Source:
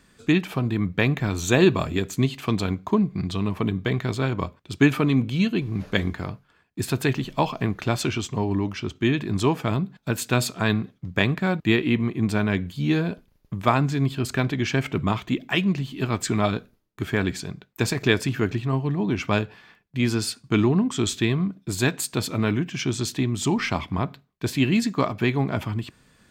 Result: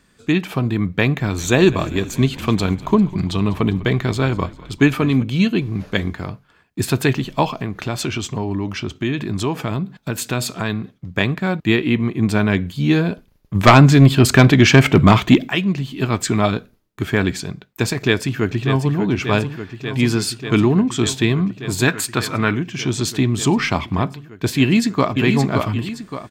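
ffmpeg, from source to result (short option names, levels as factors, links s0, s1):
-filter_complex "[0:a]asplit=3[s0][s1][s2];[s0]afade=t=out:st=1.37:d=0.02[s3];[s1]asplit=7[s4][s5][s6][s7][s8][s9][s10];[s5]adelay=199,afreqshift=-42,volume=0.112[s11];[s6]adelay=398,afreqshift=-84,volume=0.0733[s12];[s7]adelay=597,afreqshift=-126,volume=0.0473[s13];[s8]adelay=796,afreqshift=-168,volume=0.0309[s14];[s9]adelay=995,afreqshift=-210,volume=0.02[s15];[s10]adelay=1194,afreqshift=-252,volume=0.013[s16];[s4][s11][s12][s13][s14][s15][s16]amix=inputs=7:normalize=0,afade=t=in:st=1.37:d=0.02,afade=t=out:st=5.22:d=0.02[s17];[s2]afade=t=in:st=5.22:d=0.02[s18];[s3][s17][s18]amix=inputs=3:normalize=0,asettb=1/sr,asplit=3[s19][s20][s21];[s19]atrim=end=7.554[s22];[s20]atrim=start=7.55:end=11.12,asetpts=PTS-STARTPTS,afade=t=in:d=0.004:c=qsin,afade=t=out:st=3.566:d=0.004:c=qsin,acompressor=threshold=0.0355:ratio=2:attack=3.2:release=140:knee=1:detection=peak[s23];[s21]atrim=start=11.116[s24];[s22][s23]acrossfade=d=0.004:c1=hsin:c2=qsin[s25];[s25][s24]acrossfade=d=0.004:c1=qsin:c2=hsin,asplit=3[s26][s27][s28];[s26]afade=t=out:st=13.54:d=0.02[s29];[s27]aeval=exprs='0.631*sin(PI/2*2.51*val(0)/0.631)':c=same,afade=t=in:st=13.54:d=0.02,afade=t=out:st=15.48:d=0.02[s30];[s28]afade=t=in:st=15.48:d=0.02[s31];[s29][s30][s31]amix=inputs=3:normalize=0,asplit=2[s32][s33];[s33]afade=t=in:st=18.02:d=0.01,afade=t=out:st=18.97:d=0.01,aecho=0:1:590|1180|1770|2360|2950|3540|4130|4720|5310|5900|6490|7080:0.298538|0.253758|0.215694|0.18334|0.155839|0.132463|0.112594|0.0957045|0.0813488|0.0691465|0.0587745|0.0499584[s34];[s32][s34]amix=inputs=2:normalize=0,asplit=3[s35][s36][s37];[s35]afade=t=out:st=21.87:d=0.02[s38];[s36]equalizer=f=1500:t=o:w=1.5:g=9.5,afade=t=in:st=21.87:d=0.02,afade=t=out:st=22.54:d=0.02[s39];[s37]afade=t=in:st=22.54:d=0.02[s40];[s38][s39][s40]amix=inputs=3:normalize=0,asplit=2[s41][s42];[s42]afade=t=in:st=24.59:d=0.01,afade=t=out:st=25.13:d=0.01,aecho=0:1:570|1140|1710|2280:0.595662|0.208482|0.0729686|0.025539[s43];[s41][s43]amix=inputs=2:normalize=0,dynaudnorm=f=110:g=7:m=2.24"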